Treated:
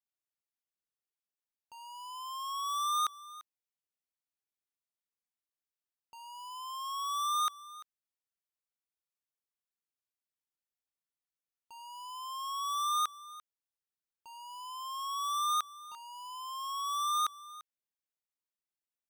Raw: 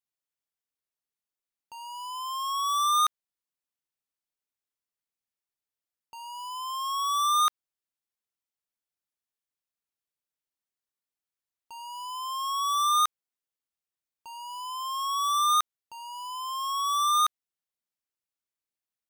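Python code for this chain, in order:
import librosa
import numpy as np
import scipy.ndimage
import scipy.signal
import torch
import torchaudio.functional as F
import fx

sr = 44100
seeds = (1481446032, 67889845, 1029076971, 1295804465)

y = x + 10.0 ** (-18.0 / 20.0) * np.pad(x, (int(343 * sr / 1000.0), 0))[:len(x)]
y = F.gain(torch.from_numpy(y), -7.5).numpy()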